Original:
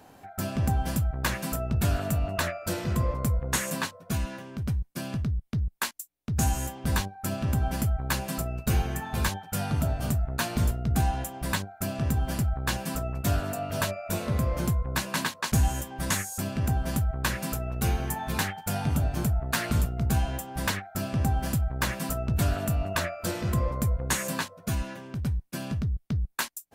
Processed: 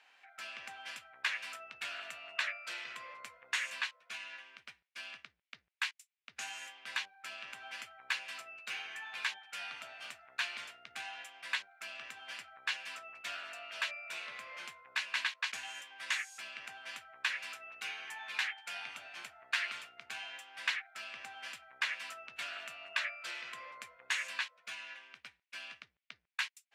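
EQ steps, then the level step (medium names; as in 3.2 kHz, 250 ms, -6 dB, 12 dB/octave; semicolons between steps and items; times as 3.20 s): ladder band-pass 2.9 kHz, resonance 40%; treble shelf 2.5 kHz -10.5 dB; +14.0 dB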